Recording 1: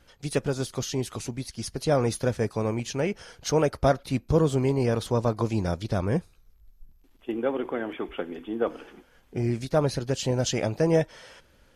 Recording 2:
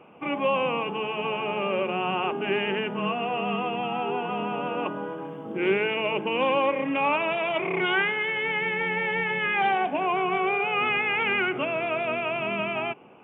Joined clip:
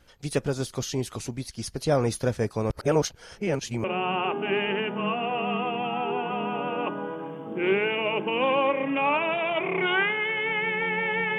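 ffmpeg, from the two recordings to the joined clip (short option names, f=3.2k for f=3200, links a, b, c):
-filter_complex "[0:a]apad=whole_dur=11.38,atrim=end=11.38,asplit=2[a][b];[a]atrim=end=2.702[c];[b]atrim=start=2.698:end=3.842,asetpts=PTS-STARTPTS,areverse[d];[1:a]atrim=start=1.828:end=9.37[e];[c][d]acrossfade=d=0.004:c1=hsin:c2=hsin[f];[f][e]acrossfade=d=0.004:c1=hsin:c2=hsin"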